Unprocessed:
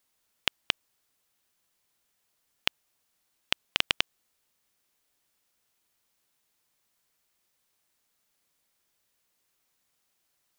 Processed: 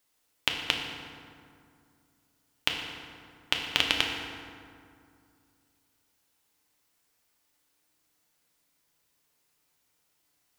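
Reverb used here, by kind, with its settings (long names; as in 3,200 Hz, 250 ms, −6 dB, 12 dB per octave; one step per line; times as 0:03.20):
feedback delay network reverb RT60 2.3 s, low-frequency decay 1.3×, high-frequency decay 0.55×, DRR 0.5 dB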